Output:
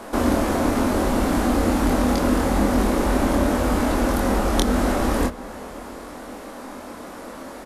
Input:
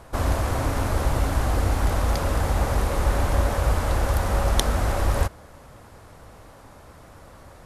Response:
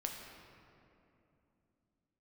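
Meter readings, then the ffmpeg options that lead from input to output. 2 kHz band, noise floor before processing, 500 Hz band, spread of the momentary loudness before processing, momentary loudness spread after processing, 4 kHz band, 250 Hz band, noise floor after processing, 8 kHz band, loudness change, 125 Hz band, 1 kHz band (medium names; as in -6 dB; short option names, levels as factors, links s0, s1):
+3.0 dB, -48 dBFS, +5.5 dB, 2 LU, 16 LU, +2.0 dB, +12.5 dB, -38 dBFS, +2.5 dB, +3.5 dB, -3.5 dB, +3.5 dB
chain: -filter_complex "[0:a]asplit=2[s0][s1];[1:a]atrim=start_sample=2205[s2];[s1][s2]afir=irnorm=-1:irlink=0,volume=0.211[s3];[s0][s3]amix=inputs=2:normalize=0,acrossover=split=300[s4][s5];[s5]acompressor=threshold=0.0112:ratio=2[s6];[s4][s6]amix=inputs=2:normalize=0,lowshelf=f=170:t=q:w=3:g=-12,asplit=2[s7][s8];[s8]adelay=24,volume=0.708[s9];[s7][s9]amix=inputs=2:normalize=0,volume=2.37"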